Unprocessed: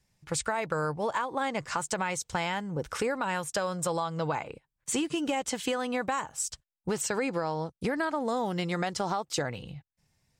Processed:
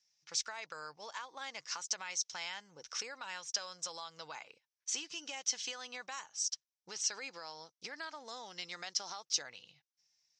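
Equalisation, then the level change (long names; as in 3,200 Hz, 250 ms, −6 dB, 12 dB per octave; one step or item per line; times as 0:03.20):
resonant band-pass 5,800 Hz, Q 5.9
high-frequency loss of the air 160 metres
+16.5 dB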